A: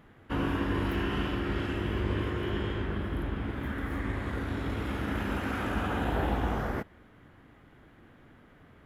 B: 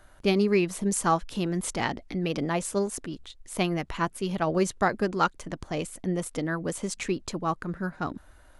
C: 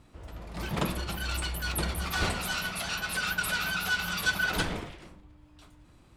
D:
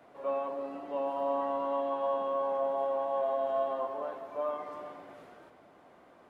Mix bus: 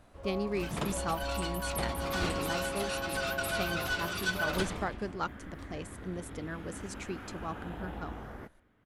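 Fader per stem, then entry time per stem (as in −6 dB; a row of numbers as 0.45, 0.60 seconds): −12.5, −10.5, −5.0, −7.5 decibels; 1.65, 0.00, 0.00, 0.00 seconds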